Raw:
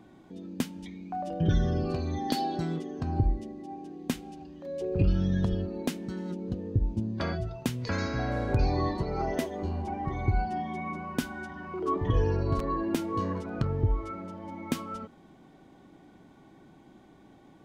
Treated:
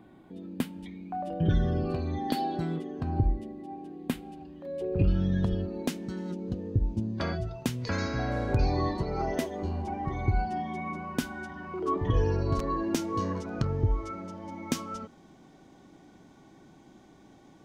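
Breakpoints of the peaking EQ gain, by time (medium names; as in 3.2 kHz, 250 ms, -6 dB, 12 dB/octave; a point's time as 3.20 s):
peaking EQ 6 kHz 0.81 oct
4.99 s -10 dB
5.92 s +1.5 dB
12.12 s +1.5 dB
12.72 s +8.5 dB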